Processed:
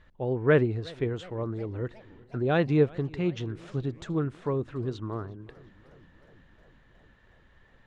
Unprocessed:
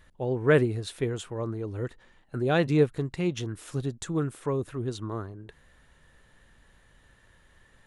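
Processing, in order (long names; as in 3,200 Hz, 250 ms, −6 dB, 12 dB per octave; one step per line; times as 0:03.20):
high-frequency loss of the air 170 metres
feedback echo with a swinging delay time 363 ms, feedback 71%, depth 162 cents, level −23.5 dB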